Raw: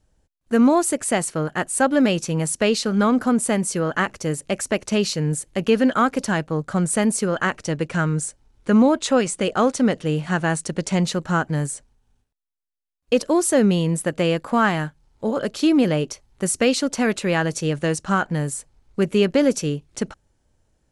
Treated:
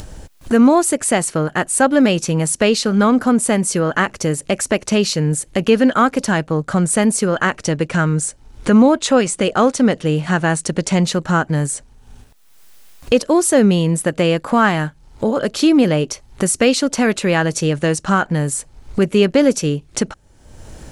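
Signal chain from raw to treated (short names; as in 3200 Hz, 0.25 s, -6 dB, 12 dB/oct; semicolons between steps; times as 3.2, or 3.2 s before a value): upward compressor, threshold -18 dBFS; gain +4.5 dB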